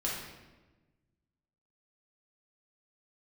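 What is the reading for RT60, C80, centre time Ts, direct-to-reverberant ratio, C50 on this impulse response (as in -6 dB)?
1.2 s, 4.0 dB, 65 ms, -5.5 dB, 1.0 dB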